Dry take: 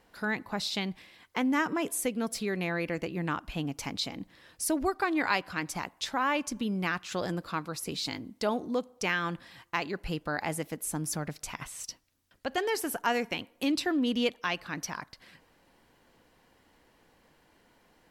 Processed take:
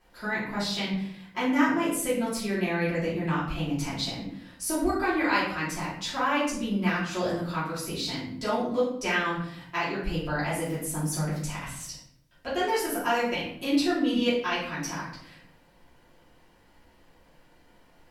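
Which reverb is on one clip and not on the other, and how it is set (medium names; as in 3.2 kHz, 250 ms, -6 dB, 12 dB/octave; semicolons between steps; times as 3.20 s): simulated room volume 120 m³, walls mixed, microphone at 2.9 m; trim -7.5 dB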